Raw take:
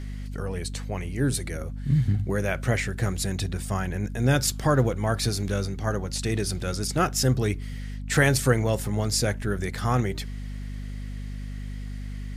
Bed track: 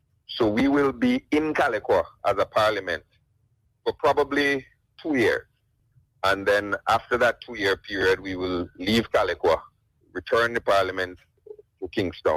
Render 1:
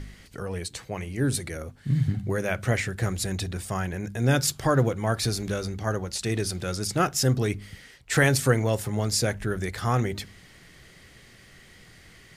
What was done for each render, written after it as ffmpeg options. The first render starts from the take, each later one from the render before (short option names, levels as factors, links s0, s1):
-af "bandreject=f=50:t=h:w=4,bandreject=f=100:t=h:w=4,bandreject=f=150:t=h:w=4,bandreject=f=200:t=h:w=4,bandreject=f=250:t=h:w=4"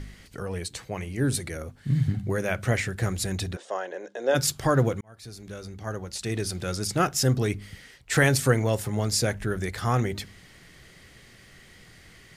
-filter_complex "[0:a]asplit=3[s0][s1][s2];[s0]afade=t=out:st=3.55:d=0.02[s3];[s1]highpass=f=370:w=0.5412,highpass=f=370:w=1.3066,equalizer=f=550:t=q:w=4:g=9,equalizer=f=1300:t=q:w=4:g=-4,equalizer=f=2300:t=q:w=4:g=-10,equalizer=f=4800:t=q:w=4:g=-9,lowpass=f=5800:w=0.5412,lowpass=f=5800:w=1.3066,afade=t=in:st=3.55:d=0.02,afade=t=out:st=4.34:d=0.02[s4];[s2]afade=t=in:st=4.34:d=0.02[s5];[s3][s4][s5]amix=inputs=3:normalize=0,asplit=2[s6][s7];[s6]atrim=end=5.01,asetpts=PTS-STARTPTS,afade=t=out:st=5.006:d=0.004:c=hsin[s8];[s7]atrim=start=5.01,asetpts=PTS-STARTPTS,afade=t=in:d=1.7[s9];[s8][s9]concat=n=2:v=0:a=1"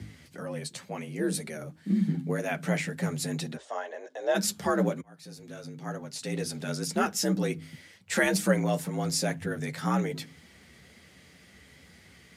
-af "flanger=delay=6.3:depth=4.7:regen=-28:speed=2:shape=sinusoidal,afreqshift=60"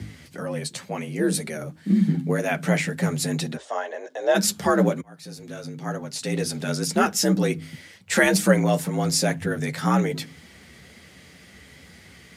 -af "volume=2.11"